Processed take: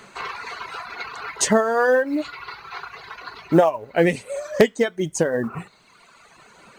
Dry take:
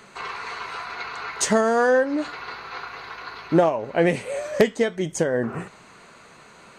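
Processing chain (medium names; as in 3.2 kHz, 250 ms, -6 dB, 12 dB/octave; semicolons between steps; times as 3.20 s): reverb removal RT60 1.6 s; companded quantiser 8-bit; trim +2.5 dB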